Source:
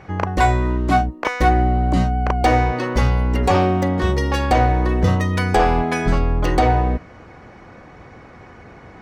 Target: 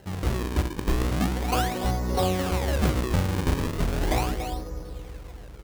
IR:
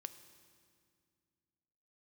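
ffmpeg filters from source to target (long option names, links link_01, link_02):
-filter_complex "[0:a]highshelf=frequency=2300:gain=-12,atempo=1.6,asplit=2[link_01][link_02];[link_02]adelay=290,highpass=300,lowpass=3400,asoftclip=type=hard:threshold=-15dB,volume=-6dB[link_03];[link_01][link_03]amix=inputs=2:normalize=0[link_04];[1:a]atrim=start_sample=2205,asetrate=23373,aresample=44100[link_05];[link_04][link_05]afir=irnorm=-1:irlink=0,acrusher=samples=37:mix=1:aa=0.000001:lfo=1:lforange=59.2:lforate=0.37,volume=-6.5dB"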